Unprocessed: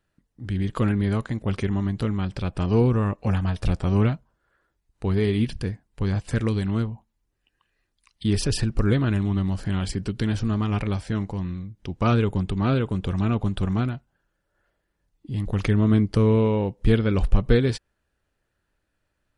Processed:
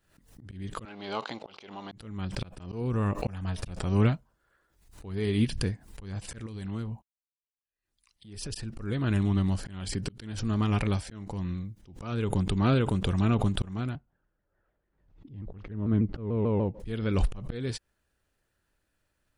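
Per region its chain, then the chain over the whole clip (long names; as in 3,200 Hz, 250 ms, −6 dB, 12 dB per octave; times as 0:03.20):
0:00.85–0:01.92: leveller curve on the samples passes 1 + loudspeaker in its box 490–5,400 Hz, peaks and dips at 850 Hz +7 dB, 1,800 Hz −9 dB, 2,900 Hz +4 dB, 4,300 Hz +5 dB
0:06.46–0:08.55: noise gate −52 dBFS, range −43 dB + downward compressor 5 to 1, threshold −28 dBFS
0:13.95–0:16.80: head-to-tape spacing loss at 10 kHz 39 dB + pitch modulation by a square or saw wave saw down 6.8 Hz, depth 160 cents
whole clip: high-shelf EQ 5,100 Hz +7 dB; volume swells 414 ms; background raised ahead of every attack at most 90 dB per second; level −2 dB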